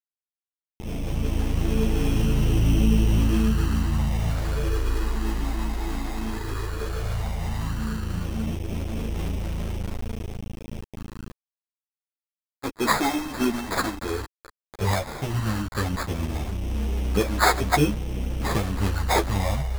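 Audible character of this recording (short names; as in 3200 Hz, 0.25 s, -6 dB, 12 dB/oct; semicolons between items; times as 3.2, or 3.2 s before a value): a quantiser's noise floor 6-bit, dither none; phasing stages 6, 0.13 Hz, lowest notch 130–2100 Hz; aliases and images of a low sample rate 2900 Hz, jitter 0%; a shimmering, thickened sound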